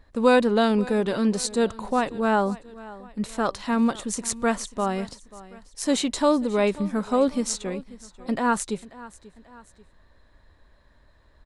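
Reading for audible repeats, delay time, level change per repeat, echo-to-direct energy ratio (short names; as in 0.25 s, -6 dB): 2, 0.538 s, -6.5 dB, -18.0 dB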